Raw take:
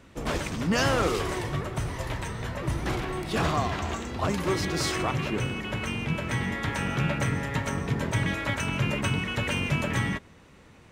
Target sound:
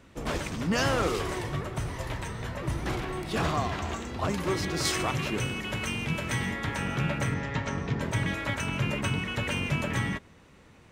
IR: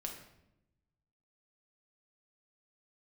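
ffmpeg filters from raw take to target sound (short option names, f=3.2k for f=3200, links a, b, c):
-filter_complex "[0:a]asettb=1/sr,asplit=3[a][b][c];[a]atrim=end=4.854[d];[b]atrim=start=4.85:end=6.52,asetpts=PTS-STARTPTS,afade=t=in:d=0.004:c=qsin,afade=t=out:st=1.666:d=0.004:c=qsin,highshelf=f=3.4k:g=8[e];[c]atrim=start=6.516[f];[d][e]acrossfade=d=0.004:c1=hsin:c2=qsin[g];[g][f]acrossfade=d=0.004:c1=qsin:c2=hsin,asettb=1/sr,asplit=3[h][i][j];[h]atrim=end=7.344[k];[i]atrim=start=7.34:end=8.01,asetpts=PTS-STARTPTS,afade=t=in:d=0.004:c=qsin,afade=t=out:st=0.666:d=0.004:c=qsin,lowpass=f=6.4k:w=0.5412,lowpass=f=6.4k:w=1.3066[l];[j]atrim=start=8.006[m];[k][l]acrossfade=d=0.004:c1=hsin:c2=qsin[n];[n][m]acrossfade=d=0.004:c1=qsin:c2=hsin,volume=-2dB"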